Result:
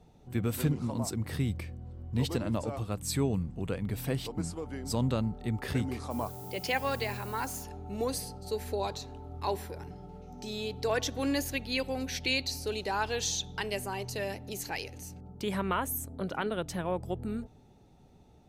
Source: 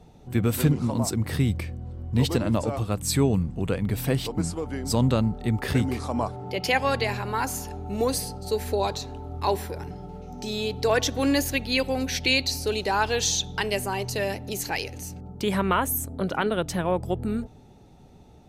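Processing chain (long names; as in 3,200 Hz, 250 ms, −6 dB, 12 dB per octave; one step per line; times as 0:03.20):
0:06.10–0:07.62: background noise violet −42 dBFS
level −7.5 dB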